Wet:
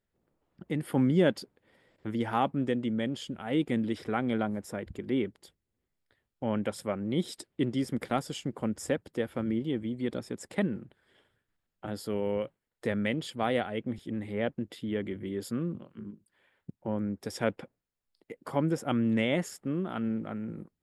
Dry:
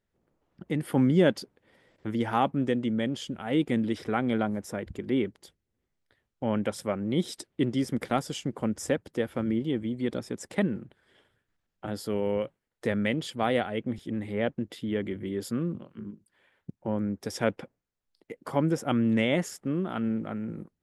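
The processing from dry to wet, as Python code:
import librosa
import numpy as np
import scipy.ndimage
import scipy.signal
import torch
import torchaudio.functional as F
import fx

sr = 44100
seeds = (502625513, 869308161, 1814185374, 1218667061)

y = fx.notch(x, sr, hz=6000.0, q=10.0)
y = F.gain(torch.from_numpy(y), -2.5).numpy()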